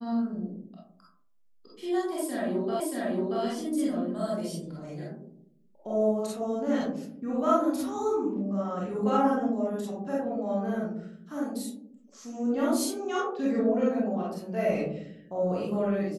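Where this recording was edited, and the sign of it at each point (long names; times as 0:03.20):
0:02.80: the same again, the last 0.63 s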